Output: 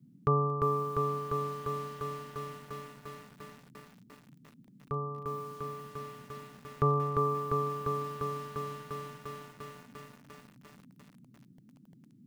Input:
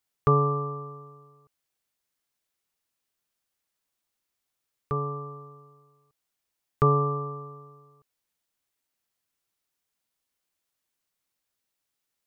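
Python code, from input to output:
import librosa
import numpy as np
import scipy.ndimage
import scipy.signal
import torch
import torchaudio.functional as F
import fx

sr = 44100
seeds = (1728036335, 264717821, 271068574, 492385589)

y = fx.dmg_noise_band(x, sr, seeds[0], low_hz=120.0, high_hz=270.0, level_db=-52.0)
y = fx.echo_crushed(y, sr, ms=348, feedback_pct=80, bits=8, wet_db=-3.0)
y = y * librosa.db_to_amplitude(-6.0)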